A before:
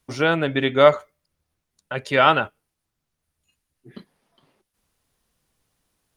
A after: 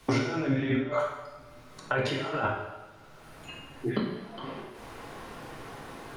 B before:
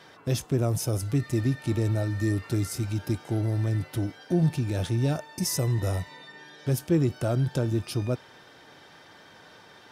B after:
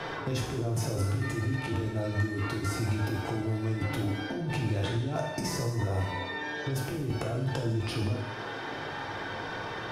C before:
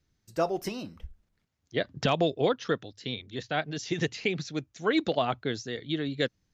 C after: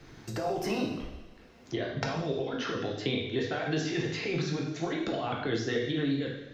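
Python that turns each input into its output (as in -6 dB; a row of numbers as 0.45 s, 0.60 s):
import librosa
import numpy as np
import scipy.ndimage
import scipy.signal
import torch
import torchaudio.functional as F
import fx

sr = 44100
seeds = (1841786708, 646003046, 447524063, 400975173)

y = fx.lowpass(x, sr, hz=1100.0, slope=6)
y = fx.low_shelf(y, sr, hz=340.0, db=-9.5)
y = fx.over_compress(y, sr, threshold_db=-39.0, ratio=-1.0)
y = fx.rev_double_slope(y, sr, seeds[0], early_s=0.73, late_s=2.1, knee_db=-27, drr_db=-2.0)
y = fx.band_squash(y, sr, depth_pct=70)
y = F.gain(torch.from_numpy(y), 4.5).numpy()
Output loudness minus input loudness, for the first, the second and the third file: -13.5 LU, -4.0 LU, -1.5 LU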